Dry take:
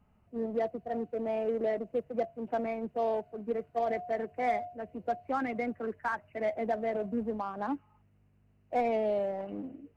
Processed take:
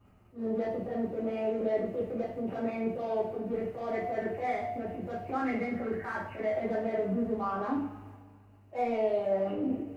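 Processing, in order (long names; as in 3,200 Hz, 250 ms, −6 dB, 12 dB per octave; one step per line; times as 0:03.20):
transient designer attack −12 dB, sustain +8 dB
brickwall limiter −30.5 dBFS, peak gain reduction 11 dB
coupled-rooms reverb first 0.51 s, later 2.1 s, from −18 dB, DRR −9 dB
level −3 dB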